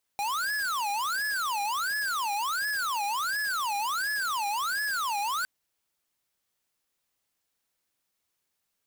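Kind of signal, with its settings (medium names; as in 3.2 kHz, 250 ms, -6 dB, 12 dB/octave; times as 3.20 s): siren wail 806–1710 Hz 1.4 per s square -29.5 dBFS 5.26 s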